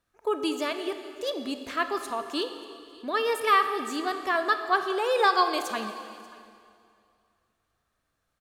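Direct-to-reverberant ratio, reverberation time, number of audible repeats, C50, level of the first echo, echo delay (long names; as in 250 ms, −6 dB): 7.5 dB, 2.3 s, 1, 8.5 dB, −22.5 dB, 586 ms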